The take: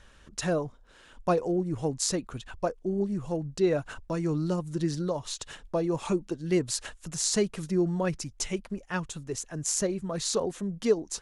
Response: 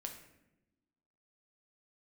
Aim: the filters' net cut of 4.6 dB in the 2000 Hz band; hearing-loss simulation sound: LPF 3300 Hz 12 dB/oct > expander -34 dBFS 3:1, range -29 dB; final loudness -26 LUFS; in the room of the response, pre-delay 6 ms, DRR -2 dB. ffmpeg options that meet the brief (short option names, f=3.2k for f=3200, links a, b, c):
-filter_complex "[0:a]equalizer=f=2k:t=o:g=-5.5,asplit=2[a][b];[1:a]atrim=start_sample=2205,adelay=6[c];[b][c]afir=irnorm=-1:irlink=0,volume=4.5dB[d];[a][d]amix=inputs=2:normalize=0,lowpass=3.3k,agate=range=-29dB:threshold=-34dB:ratio=3,volume=-0.5dB"